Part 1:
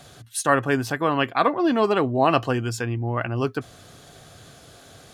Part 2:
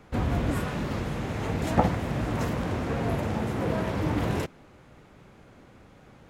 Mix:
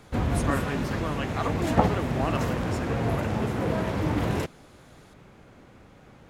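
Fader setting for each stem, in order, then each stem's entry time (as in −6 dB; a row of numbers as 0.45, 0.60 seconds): −11.5, +1.0 decibels; 0.00, 0.00 seconds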